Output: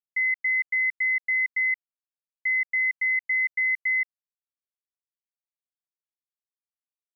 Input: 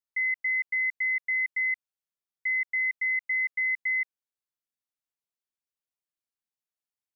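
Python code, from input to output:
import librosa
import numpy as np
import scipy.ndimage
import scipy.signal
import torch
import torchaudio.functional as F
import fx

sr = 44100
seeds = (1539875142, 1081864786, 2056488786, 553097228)

y = fx.bass_treble(x, sr, bass_db=4, treble_db=-7)
y = fx.quant_dither(y, sr, seeds[0], bits=12, dither='none')
y = F.gain(torch.from_numpy(y), 3.5).numpy()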